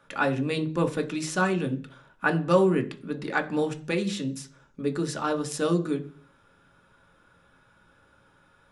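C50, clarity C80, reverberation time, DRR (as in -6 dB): 16.5 dB, 20.5 dB, 0.45 s, 5.0 dB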